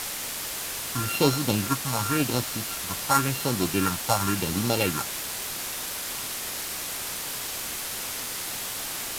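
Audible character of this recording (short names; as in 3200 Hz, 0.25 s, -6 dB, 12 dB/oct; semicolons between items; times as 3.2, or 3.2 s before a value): a buzz of ramps at a fixed pitch in blocks of 32 samples; phasing stages 4, 0.92 Hz, lowest notch 340–2200 Hz; a quantiser's noise floor 6-bit, dither triangular; Vorbis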